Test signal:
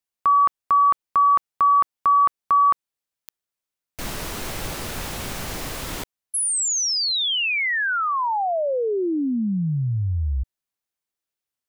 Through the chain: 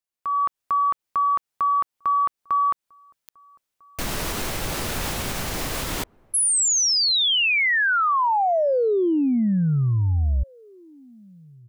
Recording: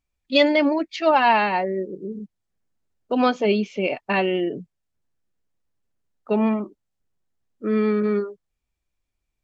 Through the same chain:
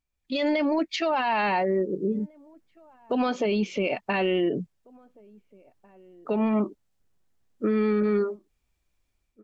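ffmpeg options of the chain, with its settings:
ffmpeg -i in.wav -filter_complex "[0:a]areverse,acompressor=threshold=-26dB:ratio=6:attack=18:release=22:knee=1:detection=peak,areverse,alimiter=limit=-22.5dB:level=0:latency=1:release=156,dynaudnorm=framelen=120:gausssize=5:maxgain=10dB,asplit=2[link_01][link_02];[link_02]adelay=1749,volume=-27dB,highshelf=frequency=4000:gain=-39.4[link_03];[link_01][link_03]amix=inputs=2:normalize=0,volume=-4.5dB" out.wav

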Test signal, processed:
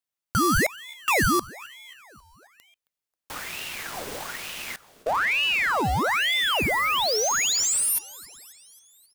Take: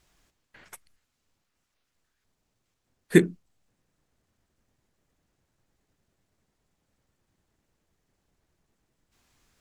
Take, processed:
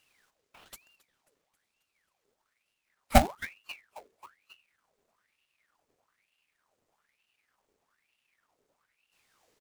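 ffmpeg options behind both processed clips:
ffmpeg -i in.wav -filter_complex "[0:a]acrusher=bits=2:mode=log:mix=0:aa=0.000001,asplit=6[link_01][link_02][link_03][link_04][link_05][link_06];[link_02]adelay=269,afreqshift=-67,volume=-21dB[link_07];[link_03]adelay=538,afreqshift=-134,volume=-25.4dB[link_08];[link_04]adelay=807,afreqshift=-201,volume=-29.9dB[link_09];[link_05]adelay=1076,afreqshift=-268,volume=-34.3dB[link_10];[link_06]adelay=1345,afreqshift=-335,volume=-38.7dB[link_11];[link_01][link_07][link_08][link_09][link_10][link_11]amix=inputs=6:normalize=0,aeval=exprs='val(0)*sin(2*PI*1600*n/s+1600*0.75/1.1*sin(2*PI*1.1*n/s))':channel_layout=same" out.wav

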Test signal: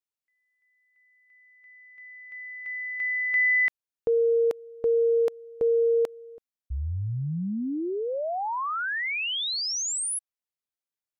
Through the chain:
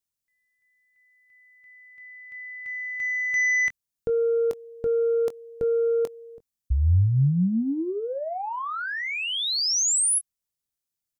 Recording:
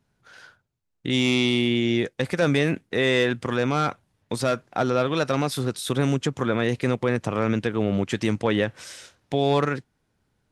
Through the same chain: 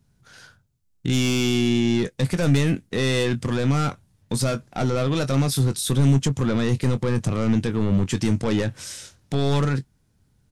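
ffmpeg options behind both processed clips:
ffmpeg -i in.wav -filter_complex "[0:a]aeval=exprs='0.355*(cos(1*acos(clip(val(0)/0.355,-1,1)))-cos(1*PI/2))+0.0708*(cos(5*acos(clip(val(0)/0.355,-1,1)))-cos(5*PI/2))':channel_layout=same,bass=frequency=250:gain=12,treble=frequency=4000:gain=9,asplit=2[link_01][link_02];[link_02]adelay=22,volume=-11.5dB[link_03];[link_01][link_03]amix=inputs=2:normalize=0,volume=-7.5dB" out.wav

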